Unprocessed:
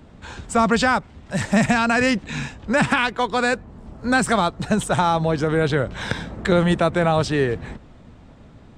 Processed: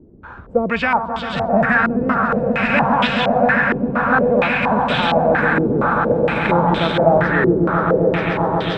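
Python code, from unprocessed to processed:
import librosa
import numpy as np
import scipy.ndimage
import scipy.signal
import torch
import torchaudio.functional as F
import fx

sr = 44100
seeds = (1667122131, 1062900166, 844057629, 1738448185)

y = fx.echo_swell(x, sr, ms=133, loudest=8, wet_db=-8.0)
y = fx.filter_held_lowpass(y, sr, hz=4.3, low_hz=370.0, high_hz=3300.0)
y = F.gain(torch.from_numpy(y), -3.5).numpy()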